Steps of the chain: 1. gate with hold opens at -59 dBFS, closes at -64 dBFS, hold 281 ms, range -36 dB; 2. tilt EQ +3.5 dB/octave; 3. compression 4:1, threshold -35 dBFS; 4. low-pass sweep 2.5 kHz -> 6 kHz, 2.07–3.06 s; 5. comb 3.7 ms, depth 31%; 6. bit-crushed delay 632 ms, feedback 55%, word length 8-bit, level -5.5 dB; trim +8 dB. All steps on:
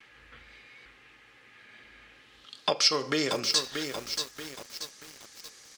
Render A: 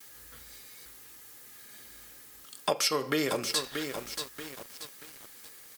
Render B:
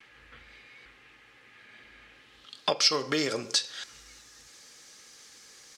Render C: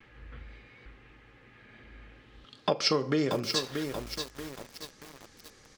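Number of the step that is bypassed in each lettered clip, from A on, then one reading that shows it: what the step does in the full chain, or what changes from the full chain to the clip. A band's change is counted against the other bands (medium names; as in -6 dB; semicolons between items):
4, 4 kHz band -5.5 dB; 6, loudness change +1.5 LU; 2, 125 Hz band +9.5 dB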